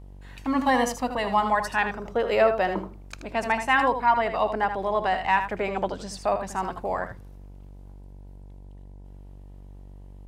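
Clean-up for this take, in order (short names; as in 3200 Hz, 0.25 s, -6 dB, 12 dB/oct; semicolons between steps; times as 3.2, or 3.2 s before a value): de-hum 48 Hz, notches 21; inverse comb 79 ms -9 dB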